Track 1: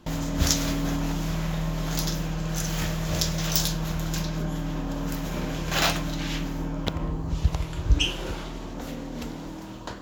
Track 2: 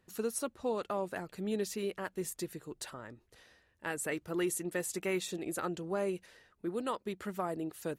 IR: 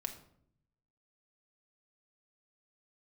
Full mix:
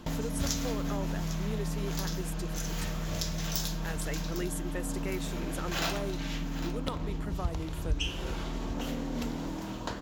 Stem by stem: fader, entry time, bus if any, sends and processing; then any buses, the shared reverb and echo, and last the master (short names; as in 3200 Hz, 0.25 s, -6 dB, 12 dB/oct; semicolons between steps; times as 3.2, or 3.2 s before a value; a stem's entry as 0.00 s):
+2.5 dB, 0.00 s, send -6.5 dB, echo send -18 dB, auto duck -12 dB, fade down 0.25 s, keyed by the second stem
+3.0 dB, 0.00 s, no send, no echo send, dry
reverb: on, RT60 0.65 s, pre-delay 4 ms
echo: echo 0.803 s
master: compressor 1.5:1, threshold -41 dBFS, peak gain reduction 10 dB